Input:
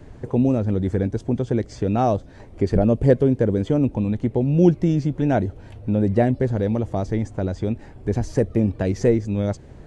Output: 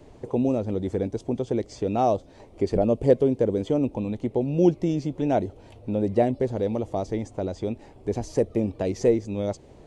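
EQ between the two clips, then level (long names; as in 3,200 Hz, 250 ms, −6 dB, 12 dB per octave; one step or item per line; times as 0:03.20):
bass and treble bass −10 dB, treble −1 dB
parametric band 1,600 Hz −10.5 dB 0.69 octaves
0.0 dB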